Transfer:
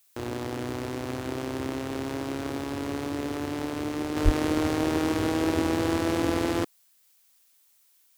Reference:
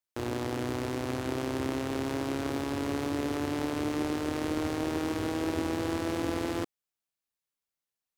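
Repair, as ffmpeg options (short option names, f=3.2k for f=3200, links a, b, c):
-filter_complex "[0:a]asplit=3[a][b][c];[a]afade=t=out:st=4.24:d=0.02[d];[b]highpass=f=140:w=0.5412,highpass=f=140:w=1.3066,afade=t=in:st=4.24:d=0.02,afade=t=out:st=4.36:d=0.02[e];[c]afade=t=in:st=4.36:d=0.02[f];[d][e][f]amix=inputs=3:normalize=0,agate=range=-21dB:threshold=-55dB,asetnsamples=n=441:p=0,asendcmd='4.16 volume volume -5.5dB',volume=0dB"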